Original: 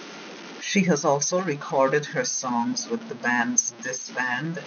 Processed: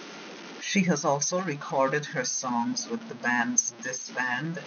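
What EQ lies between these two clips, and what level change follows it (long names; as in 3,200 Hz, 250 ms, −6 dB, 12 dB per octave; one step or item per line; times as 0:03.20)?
dynamic equaliser 420 Hz, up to −5 dB, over −36 dBFS, Q 2.3
−2.5 dB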